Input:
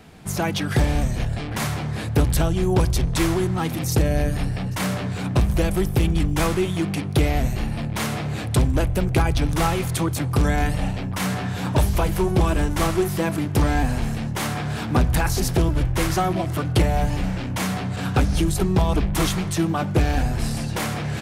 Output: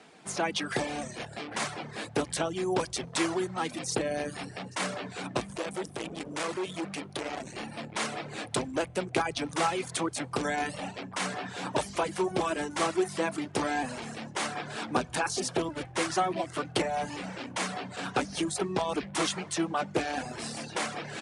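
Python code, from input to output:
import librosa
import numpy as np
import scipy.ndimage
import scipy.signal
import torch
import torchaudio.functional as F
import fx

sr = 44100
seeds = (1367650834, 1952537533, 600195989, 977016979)

y = fx.clip_hard(x, sr, threshold_db=-23.0, at=(5.57, 7.56))
y = fx.notch(y, sr, hz=2000.0, q=8.9, at=(14.94, 15.57))
y = scipy.signal.sosfilt(scipy.signal.butter(2, 320.0, 'highpass', fs=sr, output='sos'), y)
y = fx.dereverb_blind(y, sr, rt60_s=0.54)
y = scipy.signal.sosfilt(scipy.signal.butter(12, 10000.0, 'lowpass', fs=sr, output='sos'), y)
y = y * librosa.db_to_amplitude(-3.5)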